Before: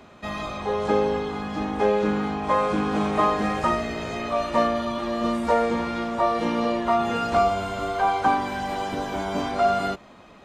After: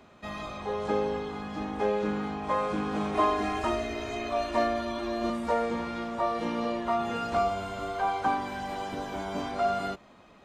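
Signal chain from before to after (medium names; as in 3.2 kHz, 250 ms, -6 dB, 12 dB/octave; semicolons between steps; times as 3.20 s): 3.14–5.30 s: comb 2.9 ms, depth 85%; trim -6.5 dB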